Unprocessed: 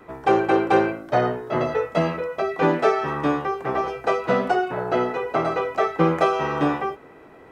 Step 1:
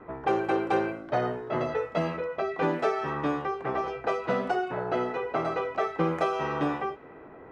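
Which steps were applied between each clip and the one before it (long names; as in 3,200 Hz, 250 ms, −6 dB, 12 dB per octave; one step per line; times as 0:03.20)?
low-pass that shuts in the quiet parts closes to 1,600 Hz, open at −16 dBFS
downward compressor 1.5 to 1, threshold −36 dBFS, peak gain reduction 8.5 dB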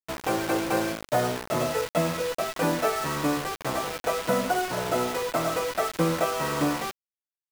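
notch comb filter 400 Hz
bit reduction 6 bits
level +3.5 dB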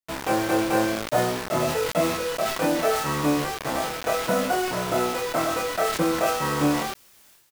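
double-tracking delay 27 ms −2.5 dB
level that may fall only so fast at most 56 dB per second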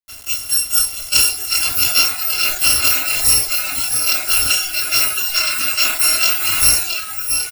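samples in bit-reversed order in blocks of 256 samples
bouncing-ball delay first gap 670 ms, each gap 0.75×, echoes 5
noise reduction from a noise print of the clip's start 12 dB
level +8.5 dB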